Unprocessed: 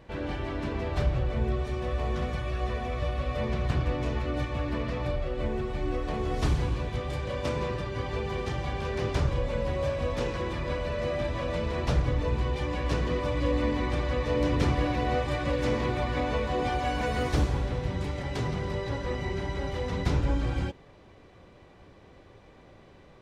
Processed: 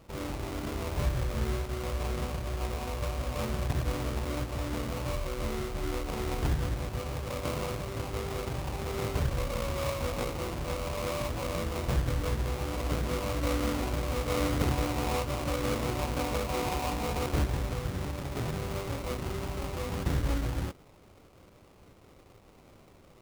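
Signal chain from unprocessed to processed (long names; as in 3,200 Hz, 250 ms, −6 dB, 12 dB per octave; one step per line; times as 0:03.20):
sample-rate reduction 1,700 Hz, jitter 20%
level −3 dB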